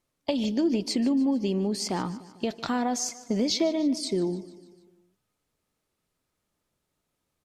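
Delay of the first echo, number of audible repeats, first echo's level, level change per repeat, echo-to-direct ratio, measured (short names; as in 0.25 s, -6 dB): 0.149 s, 4, -18.0 dB, -5.0 dB, -16.5 dB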